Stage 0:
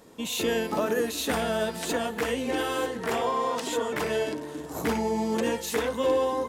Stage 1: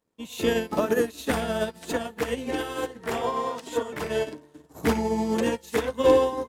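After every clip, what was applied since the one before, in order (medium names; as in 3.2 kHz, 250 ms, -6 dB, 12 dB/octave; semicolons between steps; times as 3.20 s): bass shelf 160 Hz +6.5 dB; crossover distortion -56 dBFS; upward expansion 2.5:1, over -41 dBFS; trim +7 dB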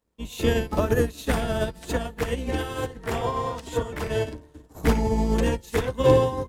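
octave divider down 2 oct, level +3 dB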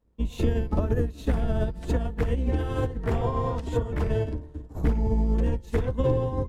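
tilt EQ -3 dB/octave; compression 4:1, threshold -22 dBFS, peak gain reduction 14.5 dB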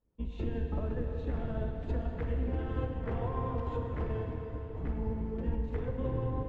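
low-pass 2.8 kHz 12 dB/octave; peak limiter -17.5 dBFS, peak gain reduction 5.5 dB; plate-style reverb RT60 4.7 s, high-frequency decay 0.9×, DRR 1.5 dB; trim -9 dB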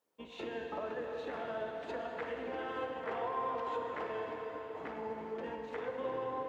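high-pass 610 Hz 12 dB/octave; in parallel at 0 dB: peak limiter -40 dBFS, peak gain reduction 10 dB; on the sum: trim +1.5 dB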